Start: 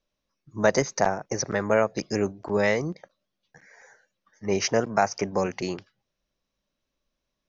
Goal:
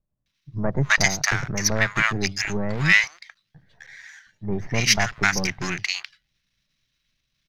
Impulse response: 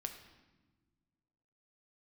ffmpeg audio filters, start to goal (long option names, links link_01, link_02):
-filter_complex "[0:a]aeval=exprs='if(lt(val(0),0),0.447*val(0),val(0))':channel_layout=same,equalizer=frequency=125:width_type=o:width=1:gain=9,equalizer=frequency=250:width_type=o:width=1:gain=-5,equalizer=frequency=500:width_type=o:width=1:gain=-12,equalizer=frequency=1000:width_type=o:width=1:gain=-4,equalizer=frequency=2000:width_type=o:width=1:gain=8,equalizer=frequency=4000:width_type=o:width=1:gain=7,acrossover=split=890[link_01][link_02];[link_02]adelay=260[link_03];[link_01][link_03]amix=inputs=2:normalize=0,volume=7dB"